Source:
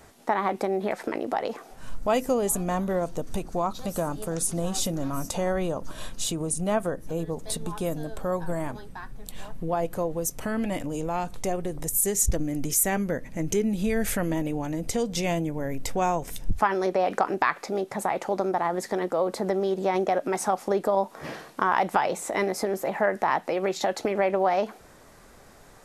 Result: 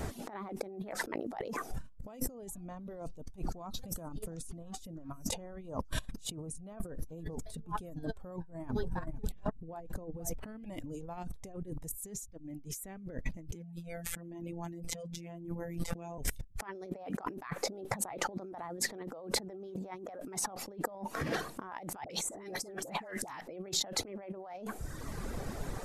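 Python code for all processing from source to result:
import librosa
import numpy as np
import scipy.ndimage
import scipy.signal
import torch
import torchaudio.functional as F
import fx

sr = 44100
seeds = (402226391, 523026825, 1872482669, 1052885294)

y = fx.chain(x, sr, fx.high_shelf(hz=2200.0, db=-7.5),
    fx.notch(hz=3000.0, q=22.0),
    fx.echo_single(ms=474, db=-14.0), at=(8.36, 10.43))
y = fx.chain(y, sr, fx.highpass(hz=45.0, slope=12),
    fx.robotise(hz=170.0),
    fx.env_flatten(amount_pct=50), at=(13.55, 16.18))
y = fx.chain(y, sr, fx.peak_eq(hz=8000.0, db=8.0, octaves=1.1),
    fx.dispersion(late='highs', ms=64.0, hz=950.0),
    fx.band_squash(depth_pct=100), at=(22.04, 23.41))
y = fx.dereverb_blind(y, sr, rt60_s=0.78)
y = fx.low_shelf(y, sr, hz=420.0, db=11.0)
y = fx.over_compress(y, sr, threshold_db=-37.0, ratio=-1.0)
y = F.gain(torch.from_numpy(y), -5.0).numpy()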